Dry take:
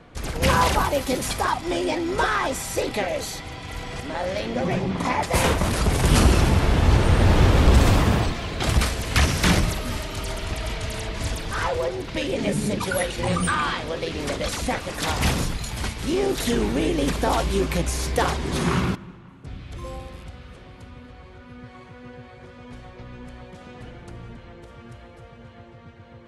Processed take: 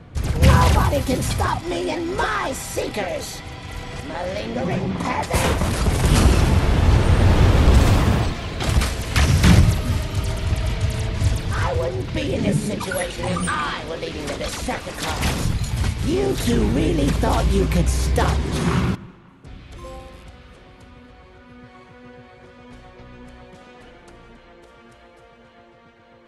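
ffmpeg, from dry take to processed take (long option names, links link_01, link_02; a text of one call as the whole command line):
ffmpeg -i in.wav -af "asetnsamples=nb_out_samples=441:pad=0,asendcmd='1.59 equalizer g 3;9.28 equalizer g 12;12.57 equalizer g 0;15.45 equalizer g 11.5;18.42 equalizer g 5;19.07 equalizer g -4.5;23.64 equalizer g -14',equalizer=frequency=100:width_type=o:width=1.8:gain=13.5" out.wav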